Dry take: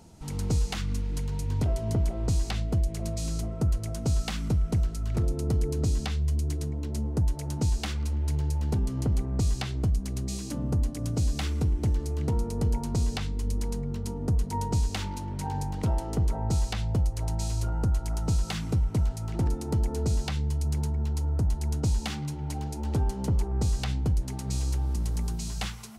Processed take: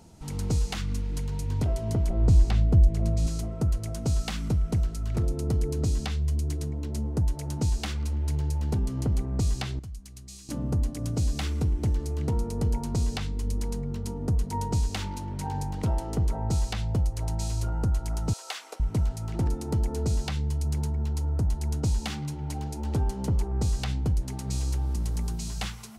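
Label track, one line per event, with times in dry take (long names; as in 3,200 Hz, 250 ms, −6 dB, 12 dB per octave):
2.100000	3.270000	spectral tilt −2 dB per octave
9.790000	10.490000	guitar amp tone stack bass-middle-treble 5-5-5
18.330000	18.800000	inverse Chebyshev high-pass filter stop band from 150 Hz, stop band 60 dB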